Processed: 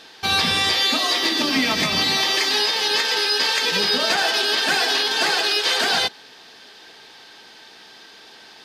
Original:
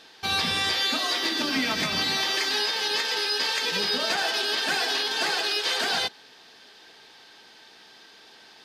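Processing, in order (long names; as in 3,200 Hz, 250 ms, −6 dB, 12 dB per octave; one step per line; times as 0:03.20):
0:00.56–0:02.88: notch filter 1,500 Hz, Q 7.5
level +6 dB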